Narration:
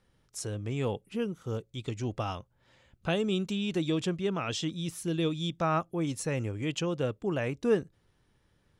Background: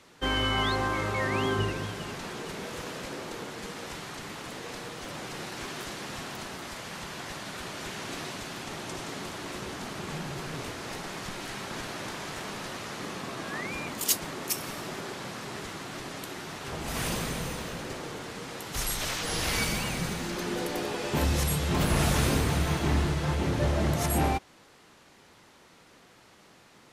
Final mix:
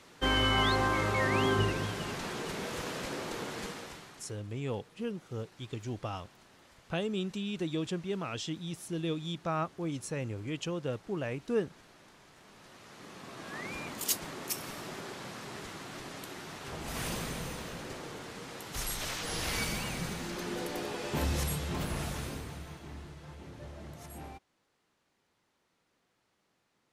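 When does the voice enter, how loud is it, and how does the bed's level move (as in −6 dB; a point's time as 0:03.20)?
3.85 s, −4.5 dB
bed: 0:03.63 0 dB
0:04.47 −21 dB
0:12.36 −21 dB
0:13.68 −5 dB
0:21.43 −5 dB
0:22.86 −20 dB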